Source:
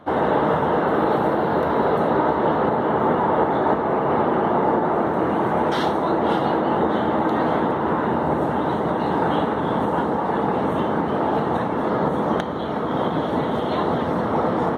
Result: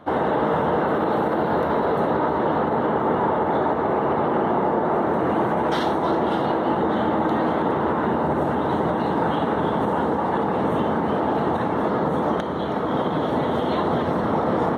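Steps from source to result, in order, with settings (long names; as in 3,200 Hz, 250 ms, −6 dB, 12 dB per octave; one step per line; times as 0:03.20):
brickwall limiter −13 dBFS, peak gain reduction 6 dB
on a send: delay that swaps between a low-pass and a high-pass 160 ms, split 800 Hz, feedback 58%, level −9 dB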